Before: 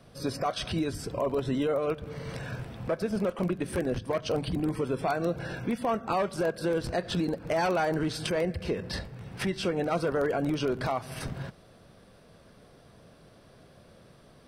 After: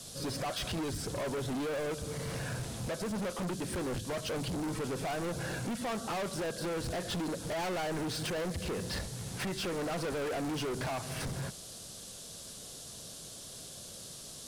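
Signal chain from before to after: band noise 3.2–11 kHz -49 dBFS; hard clipper -34 dBFS, distortion -5 dB; trim +1 dB

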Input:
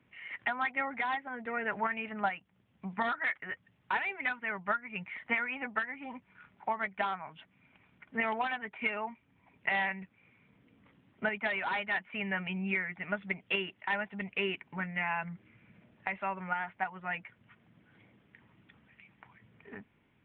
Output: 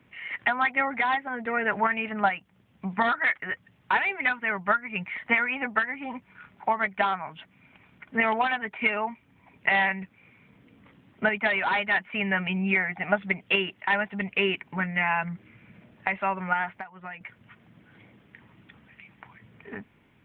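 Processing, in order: 12.76–13.18 s: peaking EQ 760 Hz +14 dB 0.33 oct; 16.78–17.21 s: compression 10:1, threshold -44 dBFS, peak gain reduction 16.5 dB; trim +8 dB

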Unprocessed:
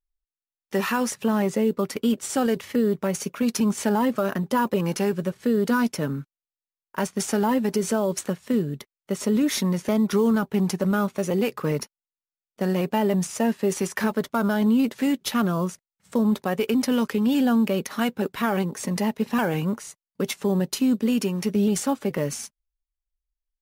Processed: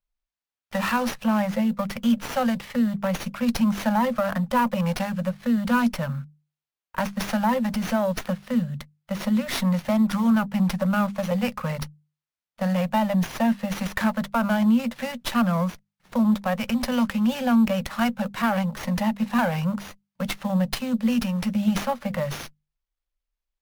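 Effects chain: Chebyshev band-stop 240–510 Hz, order 4; hum notches 50/100/150/200 Hz; sliding maximum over 5 samples; trim +2.5 dB

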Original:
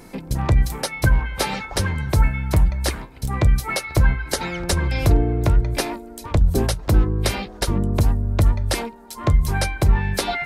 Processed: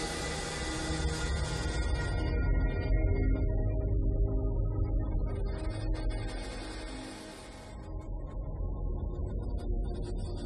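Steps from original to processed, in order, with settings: Doppler pass-by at 2.88 s, 40 m/s, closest 28 m; Paulstretch 4.2×, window 1.00 s, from 4.24 s; spectral gate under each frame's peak -30 dB strong; trim -3 dB

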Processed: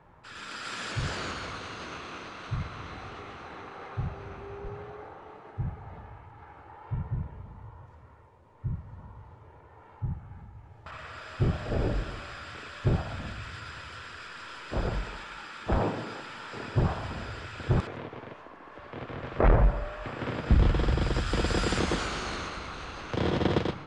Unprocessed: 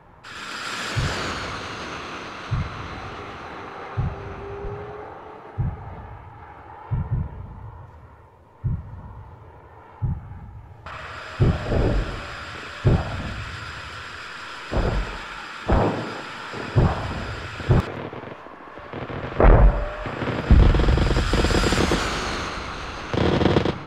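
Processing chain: resampled via 22.05 kHz; trim -7.5 dB

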